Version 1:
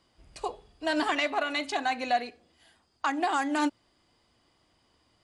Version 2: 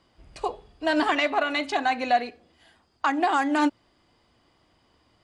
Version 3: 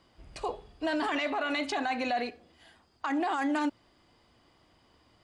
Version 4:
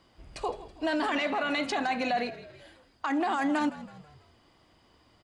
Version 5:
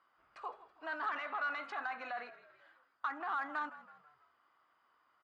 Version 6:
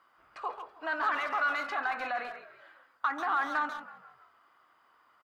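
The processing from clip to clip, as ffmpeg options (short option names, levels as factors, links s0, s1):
-af "highshelf=f=5300:g=-9.5,volume=1.78"
-af "alimiter=limit=0.075:level=0:latency=1:release=22"
-filter_complex "[0:a]asplit=5[s0][s1][s2][s3][s4];[s1]adelay=163,afreqshift=-52,volume=0.158[s5];[s2]adelay=326,afreqshift=-104,volume=0.0759[s6];[s3]adelay=489,afreqshift=-156,volume=0.0363[s7];[s4]adelay=652,afreqshift=-208,volume=0.0176[s8];[s0][s5][s6][s7][s8]amix=inputs=5:normalize=0,volume=1.19"
-af "bandpass=f=1300:t=q:w=4.1:csg=0,asoftclip=type=tanh:threshold=0.0473,volume=1.12"
-filter_complex "[0:a]asplit=2[s0][s1];[s1]adelay=140,highpass=300,lowpass=3400,asoftclip=type=hard:threshold=0.0141,volume=0.398[s2];[s0][s2]amix=inputs=2:normalize=0,volume=2.37"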